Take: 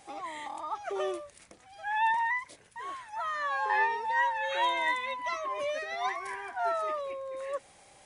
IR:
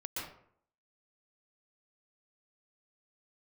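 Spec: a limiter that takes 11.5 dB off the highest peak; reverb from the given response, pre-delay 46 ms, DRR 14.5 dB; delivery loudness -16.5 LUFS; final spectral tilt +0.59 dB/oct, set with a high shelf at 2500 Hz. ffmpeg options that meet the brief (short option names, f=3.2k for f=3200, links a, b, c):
-filter_complex "[0:a]highshelf=f=2.5k:g=-4,alimiter=level_in=4.5dB:limit=-24dB:level=0:latency=1,volume=-4.5dB,asplit=2[a][b];[1:a]atrim=start_sample=2205,adelay=46[c];[b][c]afir=irnorm=-1:irlink=0,volume=-16dB[d];[a][d]amix=inputs=2:normalize=0,volume=20dB"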